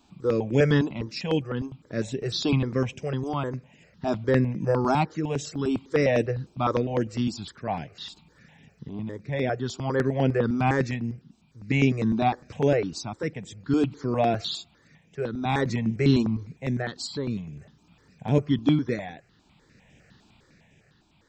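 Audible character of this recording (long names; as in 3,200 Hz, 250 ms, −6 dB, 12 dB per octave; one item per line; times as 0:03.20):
tremolo triangle 0.51 Hz, depth 55%
notches that jump at a steady rate 9.9 Hz 520–4,300 Hz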